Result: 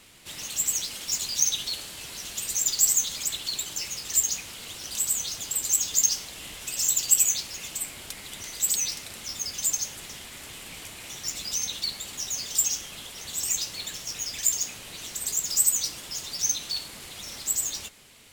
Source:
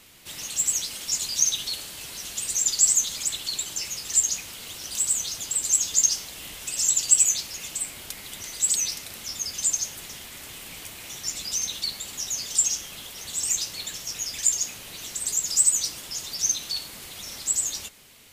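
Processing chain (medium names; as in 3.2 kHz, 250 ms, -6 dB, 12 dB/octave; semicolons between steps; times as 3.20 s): decimation joined by straight lines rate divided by 2×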